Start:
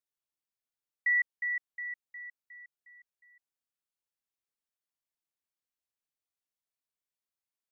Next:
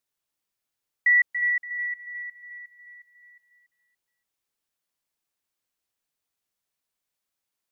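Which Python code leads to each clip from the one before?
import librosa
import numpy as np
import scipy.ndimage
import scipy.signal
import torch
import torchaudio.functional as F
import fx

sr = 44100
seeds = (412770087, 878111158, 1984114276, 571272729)

y = fx.echo_feedback(x, sr, ms=285, feedback_pct=31, wet_db=-9.5)
y = y * librosa.db_to_amplitude(8.0)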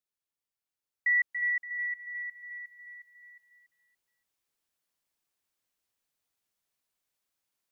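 y = fx.rider(x, sr, range_db=5, speed_s=2.0)
y = y * librosa.db_to_amplitude(-5.0)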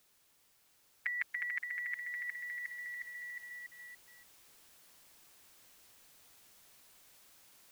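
y = fx.spectral_comp(x, sr, ratio=4.0)
y = y * librosa.db_to_amplitude(2.0)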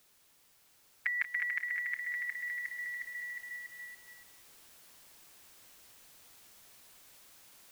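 y = x + 10.0 ** (-13.0 / 20.0) * np.pad(x, (int(184 * sr / 1000.0), 0))[:len(x)]
y = y * librosa.db_to_amplitude(3.5)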